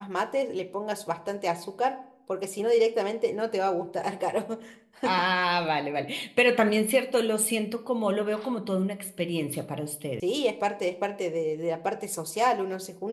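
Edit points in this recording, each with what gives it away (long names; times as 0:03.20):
0:10.20: cut off before it has died away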